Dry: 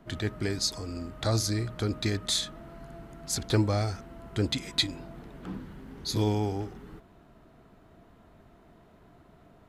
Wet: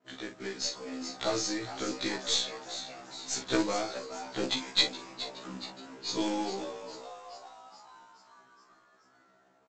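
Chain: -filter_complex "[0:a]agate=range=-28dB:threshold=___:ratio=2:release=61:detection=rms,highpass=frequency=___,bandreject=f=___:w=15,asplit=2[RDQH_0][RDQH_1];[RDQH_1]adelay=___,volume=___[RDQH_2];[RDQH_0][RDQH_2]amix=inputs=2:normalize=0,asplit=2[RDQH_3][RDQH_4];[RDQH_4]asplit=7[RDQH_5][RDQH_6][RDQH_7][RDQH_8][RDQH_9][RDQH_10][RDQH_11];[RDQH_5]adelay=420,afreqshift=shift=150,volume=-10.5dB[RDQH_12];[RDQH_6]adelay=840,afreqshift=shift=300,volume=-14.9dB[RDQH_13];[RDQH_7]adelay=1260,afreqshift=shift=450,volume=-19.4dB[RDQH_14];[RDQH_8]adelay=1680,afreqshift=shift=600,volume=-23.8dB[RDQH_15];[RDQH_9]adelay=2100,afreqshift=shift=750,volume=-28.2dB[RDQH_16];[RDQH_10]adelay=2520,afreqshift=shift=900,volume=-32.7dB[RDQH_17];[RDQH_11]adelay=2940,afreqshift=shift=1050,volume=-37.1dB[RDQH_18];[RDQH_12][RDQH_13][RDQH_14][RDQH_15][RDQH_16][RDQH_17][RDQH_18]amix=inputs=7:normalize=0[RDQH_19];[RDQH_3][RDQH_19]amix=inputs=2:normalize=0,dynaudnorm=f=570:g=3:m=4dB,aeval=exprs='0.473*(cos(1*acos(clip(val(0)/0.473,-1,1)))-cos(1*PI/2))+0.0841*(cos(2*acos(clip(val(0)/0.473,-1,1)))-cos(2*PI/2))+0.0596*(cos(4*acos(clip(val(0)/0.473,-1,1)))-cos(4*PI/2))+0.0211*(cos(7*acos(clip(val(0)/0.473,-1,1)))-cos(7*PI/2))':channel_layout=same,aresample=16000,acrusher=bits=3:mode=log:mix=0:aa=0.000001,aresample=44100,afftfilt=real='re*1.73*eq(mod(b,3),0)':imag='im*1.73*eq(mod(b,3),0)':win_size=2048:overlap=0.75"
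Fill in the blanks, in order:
-50dB, 300, 4800, 42, -8dB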